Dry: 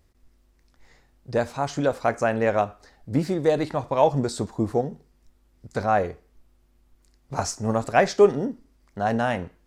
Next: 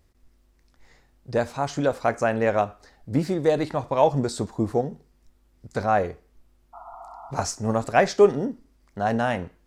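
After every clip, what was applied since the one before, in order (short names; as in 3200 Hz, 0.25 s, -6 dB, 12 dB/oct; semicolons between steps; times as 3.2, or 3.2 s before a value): spectral repair 6.76–7.28, 660–1400 Hz after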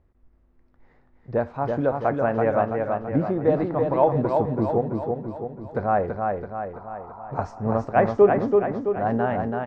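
LPF 1400 Hz 12 dB/oct; on a send: feedback echo 0.332 s, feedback 54%, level -4 dB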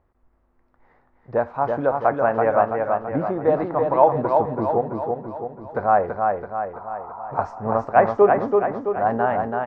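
bell 1000 Hz +11.5 dB 2.3 oct; gain -5 dB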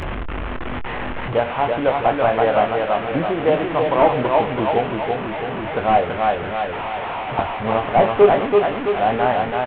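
delta modulation 16 kbps, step -22.5 dBFS; doubler 24 ms -8 dB; gain +2 dB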